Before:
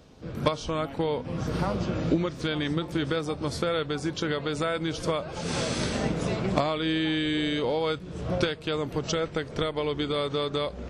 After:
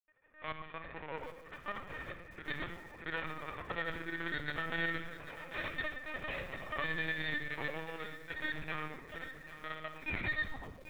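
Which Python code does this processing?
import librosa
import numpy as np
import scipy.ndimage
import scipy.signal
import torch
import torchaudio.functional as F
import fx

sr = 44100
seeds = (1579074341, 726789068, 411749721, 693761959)

y = fx.tape_stop_end(x, sr, length_s=1.04)
y = fx.highpass(y, sr, hz=110.0, slope=6)
y = fx.low_shelf_res(y, sr, hz=780.0, db=-13.0, q=3.0)
y = fx.granulator(y, sr, seeds[0], grain_ms=146.0, per_s=7.2, spray_ms=100.0, spread_st=0)
y = fx.formant_cascade(y, sr, vowel='e')
y = fx.granulator(y, sr, seeds[1], grain_ms=100.0, per_s=20.0, spray_ms=100.0, spread_st=0)
y = fx.cheby_harmonics(y, sr, harmonics=(2, 5, 6), levels_db=(-10, -19, -11), full_scale_db=-37.0)
y = fx.room_shoebox(y, sr, seeds[2], volume_m3=3000.0, walls='furnished', distance_m=2.6)
y = fx.lpc_vocoder(y, sr, seeds[3], excitation='pitch_kept', order=16)
y = fx.echo_crushed(y, sr, ms=790, feedback_pct=35, bits=10, wet_db=-13)
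y = y * 10.0 ** (8.0 / 20.0)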